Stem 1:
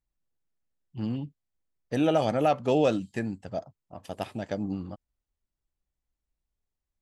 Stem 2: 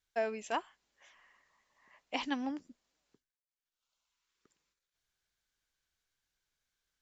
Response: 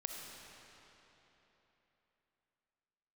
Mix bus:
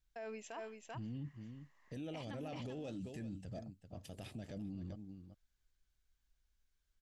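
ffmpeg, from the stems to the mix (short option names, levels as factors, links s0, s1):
-filter_complex "[0:a]equalizer=f=1000:t=o:w=1.6:g=-12.5,acompressor=threshold=0.0355:ratio=6,lowshelf=f=76:g=10.5,volume=0.708,asplit=2[s0][s1];[s1]volume=0.168[s2];[1:a]volume=0.531,asplit=2[s3][s4];[s4]volume=0.501[s5];[s2][s5]amix=inputs=2:normalize=0,aecho=0:1:388:1[s6];[s0][s3][s6]amix=inputs=3:normalize=0,alimiter=level_in=4.73:limit=0.0631:level=0:latency=1:release=19,volume=0.211"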